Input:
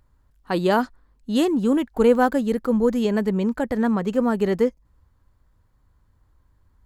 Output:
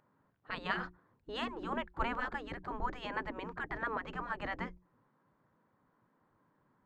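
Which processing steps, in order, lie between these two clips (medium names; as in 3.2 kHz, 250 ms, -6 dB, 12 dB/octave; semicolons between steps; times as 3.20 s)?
low-pass 1.8 kHz 12 dB/octave; hum notches 60/120/180/240/300/360 Hz; spectral gate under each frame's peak -15 dB weak; dynamic bell 540 Hz, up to -5 dB, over -52 dBFS, Q 0.96; trim +1 dB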